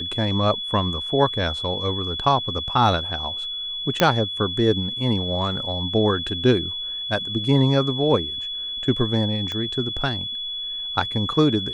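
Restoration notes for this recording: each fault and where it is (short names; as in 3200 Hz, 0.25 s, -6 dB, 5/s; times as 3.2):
tone 3400 Hz -27 dBFS
4 pop -2 dBFS
9.52 pop -16 dBFS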